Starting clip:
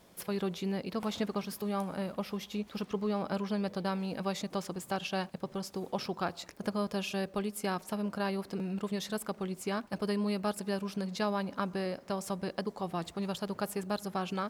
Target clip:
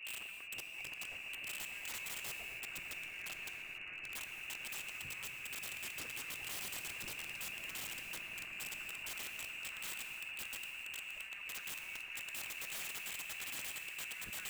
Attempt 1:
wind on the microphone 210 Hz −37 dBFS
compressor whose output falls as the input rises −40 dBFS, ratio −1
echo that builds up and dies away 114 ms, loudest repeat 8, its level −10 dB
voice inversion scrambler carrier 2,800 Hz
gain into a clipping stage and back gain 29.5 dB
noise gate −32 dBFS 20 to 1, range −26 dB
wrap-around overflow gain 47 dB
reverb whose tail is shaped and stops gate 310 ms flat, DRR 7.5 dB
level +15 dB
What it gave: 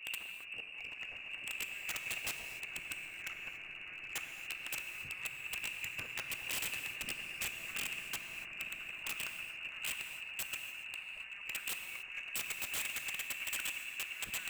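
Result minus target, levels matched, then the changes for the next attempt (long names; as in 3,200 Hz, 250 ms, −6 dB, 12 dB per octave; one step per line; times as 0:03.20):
wrap-around overflow: distortion −5 dB
change: wrap-around overflow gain 53.5 dB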